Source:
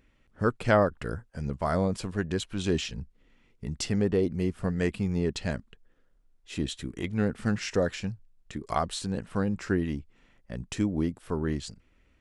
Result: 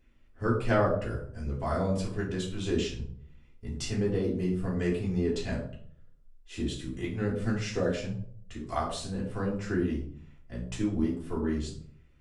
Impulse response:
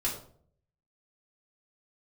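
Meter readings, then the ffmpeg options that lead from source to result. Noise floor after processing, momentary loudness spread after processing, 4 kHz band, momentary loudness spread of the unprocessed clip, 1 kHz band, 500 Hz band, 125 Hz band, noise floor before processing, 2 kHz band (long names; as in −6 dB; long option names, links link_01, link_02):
−57 dBFS, 14 LU, −3.0 dB, 13 LU, −2.5 dB, −1.5 dB, −1.0 dB, −65 dBFS, −3.0 dB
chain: -filter_complex "[1:a]atrim=start_sample=2205[link_01];[0:a][link_01]afir=irnorm=-1:irlink=0,volume=-8dB"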